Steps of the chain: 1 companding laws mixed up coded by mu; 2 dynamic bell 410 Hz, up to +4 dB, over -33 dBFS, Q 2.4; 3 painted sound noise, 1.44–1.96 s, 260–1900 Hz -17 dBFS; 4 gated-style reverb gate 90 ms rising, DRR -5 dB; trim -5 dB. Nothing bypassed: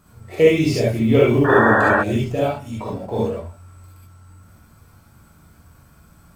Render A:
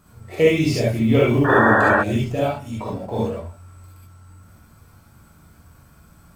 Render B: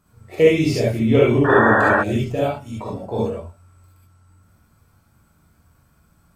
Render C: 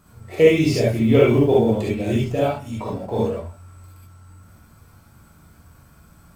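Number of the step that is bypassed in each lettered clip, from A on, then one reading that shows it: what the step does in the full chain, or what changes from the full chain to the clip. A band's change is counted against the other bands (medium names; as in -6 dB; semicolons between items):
2, loudness change -1.0 LU; 1, distortion -27 dB; 3, 2 kHz band -9.5 dB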